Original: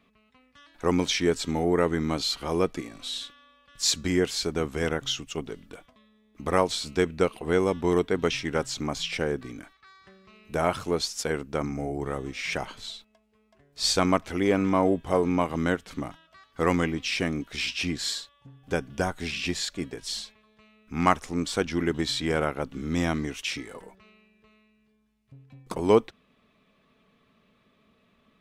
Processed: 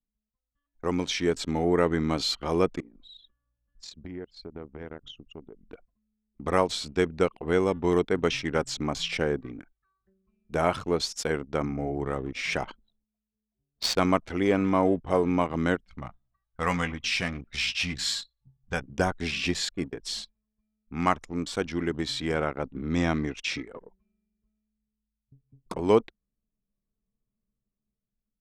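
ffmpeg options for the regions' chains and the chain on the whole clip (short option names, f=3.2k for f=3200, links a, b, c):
-filter_complex "[0:a]asettb=1/sr,asplit=3[a][b][c];[a]atrim=end=2.804[d];[b]atrim=start=2.8:end=5.65,asetpts=PTS-STARTPTS,afade=t=in:d=0.004:c=qsin,afade=t=out:st=2.846:d=0.004:c=qsin,highshelf=f=6.1k:g=-11.5,acompressor=threshold=-44dB:ratio=2.5:attack=3.2:release=140:knee=1:detection=peak,aeval=exprs='val(0)+0.000316*(sin(2*PI*60*n/s)+sin(2*PI*2*60*n/s)/2+sin(2*PI*3*60*n/s)/3+sin(2*PI*4*60*n/s)/4+sin(2*PI*5*60*n/s)/5)':c=same[e];[c]atrim=start=5.646[f];[d][e]acrossfade=d=0.004:c1=hsin:c2=qsin[g];[g][f]acrossfade=d=0.004:c1=qsin:c2=hsin,asettb=1/sr,asplit=3[h][i][j];[h]atrim=end=12.764[k];[i]atrim=start=12.76:end=13.99,asetpts=PTS-STARTPTS,afade=t=in:d=0.004:c=qsin,afade=t=out:st=1.226:d=0.004:c=qsin,highpass=f=110:p=1,adynamicsmooth=sensitivity=4.5:basefreq=690[l];[j]atrim=start=13.986[m];[k][l]acrossfade=d=0.004:c1=hsin:c2=qsin[n];[n][m]acrossfade=d=0.004:c1=qsin:c2=hsin,asettb=1/sr,asplit=3[o][p][q];[o]atrim=end=15.864[r];[p]atrim=start=15.86:end=18.84,asetpts=PTS-STARTPTS,afade=t=in:d=0.004:c=qsin,afade=t=out:st=2.976:d=0.004:c=qsin,equalizer=f=340:t=o:w=1.2:g=-14.5,asplit=2[s][t];[t]adelay=16,volume=-9dB[u];[s][u]amix=inputs=2:normalize=0,atrim=end_sample=131418,aecho=1:1:107|214|321:0.0944|0.0406|0.0175,atrim=end_sample=131418[v];[q]atrim=start=18.836[w];[r][v]acrossfade=d=0.004:c1=hsin:c2=qsin[x];[x][w]acrossfade=d=0.004:c1=qsin:c2=hsin,asettb=1/sr,asplit=3[y][z][aa];[y]atrim=end=22.344[ab];[z]atrim=start=22.34:end=23.67,asetpts=PTS-STARTPTS,afade=t=in:d=0.004:c=qsin,afade=t=out:st=1.326:d=0.004:c=qsin,lowpass=7.2k,bandreject=f=3k:w=17[ac];[aa]atrim=start=23.666[ad];[ab][ac]acrossfade=d=0.004:c1=hsin:c2=qsin[ae];[ae][ad]acrossfade=d=0.004:c1=qsin:c2=hsin,anlmdn=0.631,highshelf=f=10k:g=-7.5,dynaudnorm=f=500:g=5:m=8.5dB,volume=-6dB"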